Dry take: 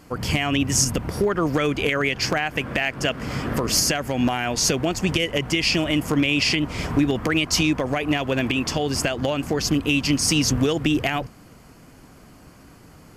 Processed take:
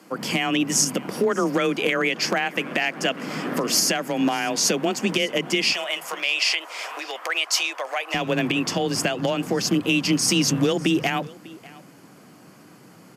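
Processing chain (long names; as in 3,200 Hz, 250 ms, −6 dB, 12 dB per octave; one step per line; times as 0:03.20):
high-pass filter 160 Hz 24 dB per octave, from 0:05.72 590 Hz, from 0:08.14 110 Hz
frequency shifter +21 Hz
single-tap delay 596 ms −21.5 dB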